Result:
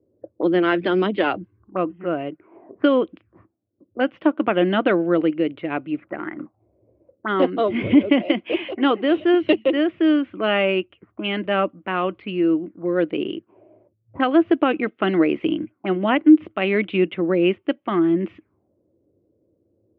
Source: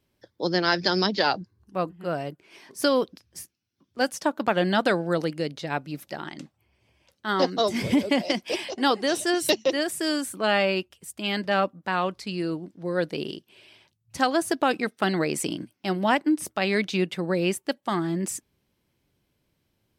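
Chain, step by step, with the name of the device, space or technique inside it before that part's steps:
envelope filter bass rig (envelope-controlled low-pass 500–3,100 Hz up, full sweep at −28.5 dBFS; loudspeaker in its box 87–2,100 Hz, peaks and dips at 100 Hz +7 dB, 150 Hz −8 dB, 320 Hz +9 dB, 870 Hz −7 dB, 1,700 Hz −7 dB)
level +3.5 dB

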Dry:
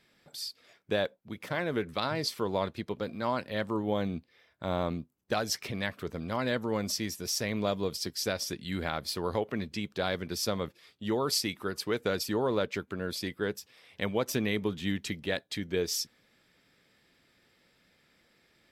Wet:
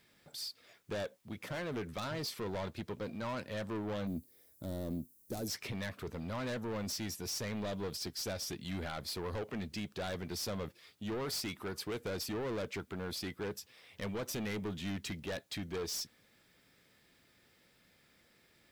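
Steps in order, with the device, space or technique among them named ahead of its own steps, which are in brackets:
open-reel tape (soft clipping −33.5 dBFS, distortion −7 dB; parametric band 90 Hz +3.5 dB 0.96 octaves; white noise bed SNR 36 dB)
0:04.07–0:05.48: drawn EQ curve 180 Hz 0 dB, 290 Hz +6 dB, 1,100 Hz −11 dB, 2,800 Hz −13 dB, 12,000 Hz +14 dB
level −1.5 dB

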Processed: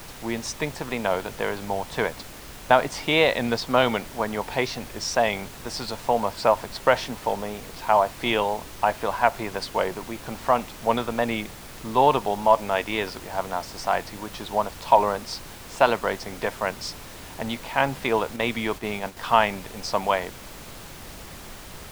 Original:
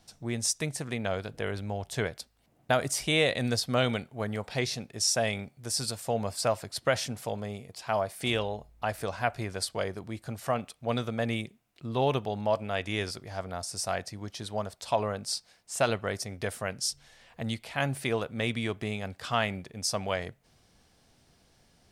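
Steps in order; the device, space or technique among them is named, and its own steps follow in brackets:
horn gramophone (band-pass filter 210–3,600 Hz; parametric band 940 Hz +11.5 dB 0.4 octaves; tape wow and flutter; pink noise bed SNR 15 dB)
0:18.36–0:19.17: noise gate −36 dBFS, range −6 dB
level +6 dB

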